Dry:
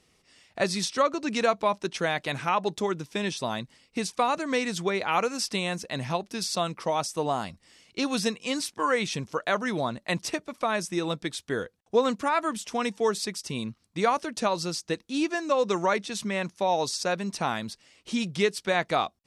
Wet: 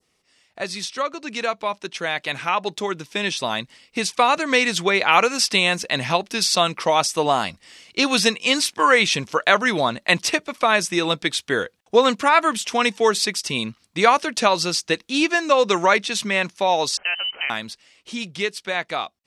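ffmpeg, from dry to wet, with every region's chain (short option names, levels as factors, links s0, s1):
-filter_complex "[0:a]asettb=1/sr,asplit=3[s0][s1][s2];[s0]atrim=end=16.974[s3];[s1]atrim=start=16.97:end=17.5,asetpts=PTS-STARTPTS,afade=t=in:d=0.004:c=qsin,afade=t=out:st=0.526:d=0.004:c=qsin,acompressor=threshold=0.0224:ratio=3:attack=3.2:release=140:knee=1:detection=peak,highshelf=f=2100:g=10.5,lowpass=f=2700:t=q:w=0.5098,lowpass=f=2700:t=q:w=0.6013,lowpass=f=2700:t=q:w=0.9,lowpass=f=2700:t=q:w=2.563,afreqshift=-3200[s4];[s2]atrim=start=17.496[s5];[s3][s4]acrossfade=d=0.004:c1=hsin:c2=qsin[s6];[s6][s5]acrossfade=d=0.004:c1=qsin:c2=hsin,lowshelf=f=240:g=-7,dynaudnorm=f=650:g=9:m=4.47,adynamicequalizer=threshold=0.0178:dfrequency=2700:dqfactor=0.79:tfrequency=2700:tqfactor=0.79:attack=5:release=100:ratio=0.375:range=3:mode=boostabove:tftype=bell,volume=0.794"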